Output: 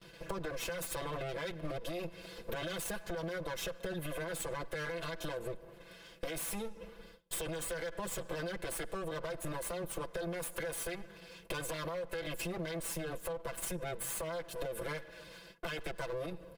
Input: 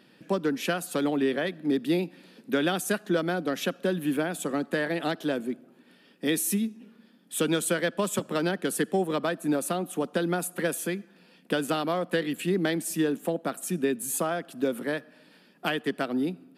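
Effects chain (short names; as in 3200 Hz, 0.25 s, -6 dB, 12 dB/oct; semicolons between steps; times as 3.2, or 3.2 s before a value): minimum comb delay 1.9 ms; gate with hold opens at -50 dBFS; comb 6 ms, depth 92%; limiter -24.5 dBFS, peak gain reduction 14 dB; compressor 12:1, threshold -39 dBFS, peak gain reduction 11.5 dB; gain +3.5 dB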